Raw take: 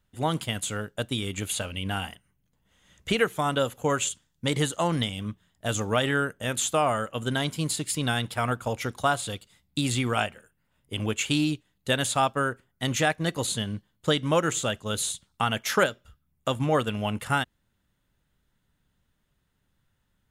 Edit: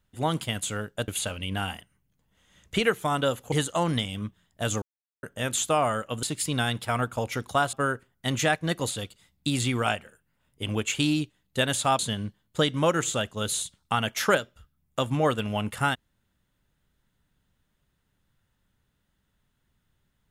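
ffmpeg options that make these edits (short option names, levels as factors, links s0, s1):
-filter_complex "[0:a]asplit=9[s0][s1][s2][s3][s4][s5][s6][s7][s8];[s0]atrim=end=1.082[s9];[s1]atrim=start=1.418:end=3.862[s10];[s2]atrim=start=4.558:end=5.86,asetpts=PTS-STARTPTS,afade=t=out:st=1.298:d=0.004:c=hsin[s11];[s3]atrim=start=5.86:end=6.27,asetpts=PTS-STARTPTS,volume=0[s12];[s4]atrim=start=6.27:end=7.272,asetpts=PTS-STARTPTS,afade=t=in:d=0.004:c=hsin[s13];[s5]atrim=start=7.718:end=9.222[s14];[s6]atrim=start=12.298:end=13.482[s15];[s7]atrim=start=9.218:end=12.302[s16];[s8]atrim=start=13.478[s17];[s9][s10]acrossfade=d=0.004:c1=hsin:c2=hsin[s18];[s11][s12][s13]concat=n=3:v=0:a=1[s19];[s18][s19]acrossfade=d=0.004:c1=hsin:c2=hsin[s20];[s20][s14]acrossfade=d=0.004:c1=hsin:c2=hsin[s21];[s21][s15]acrossfade=d=0.004:c1=hsin:c2=hsin[s22];[s22][s16]acrossfade=d=0.004:c1=hsin:c2=hsin[s23];[s23][s17]acrossfade=d=0.004:c1=hsin:c2=hsin"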